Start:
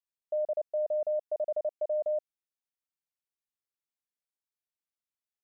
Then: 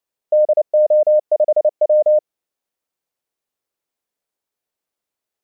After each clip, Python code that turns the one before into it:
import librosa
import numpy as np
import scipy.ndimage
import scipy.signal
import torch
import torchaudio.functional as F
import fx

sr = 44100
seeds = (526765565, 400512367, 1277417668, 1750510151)

y = fx.peak_eq(x, sr, hz=500.0, db=9.0, octaves=1.9)
y = y * librosa.db_to_amplitude(8.5)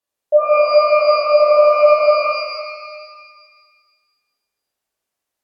y = fx.env_lowpass_down(x, sr, base_hz=510.0, full_db=-10.5)
y = fx.rev_shimmer(y, sr, seeds[0], rt60_s=1.6, semitones=12, shimmer_db=-8, drr_db=-7.0)
y = y * librosa.db_to_amplitude(-3.5)